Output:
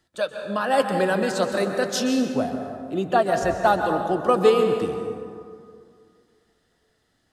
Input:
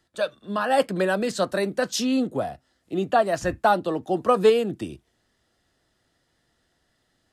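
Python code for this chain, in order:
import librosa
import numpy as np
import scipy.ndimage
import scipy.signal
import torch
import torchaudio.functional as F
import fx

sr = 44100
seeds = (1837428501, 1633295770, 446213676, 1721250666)

y = fx.rev_plate(x, sr, seeds[0], rt60_s=2.3, hf_ratio=0.45, predelay_ms=115, drr_db=4.5)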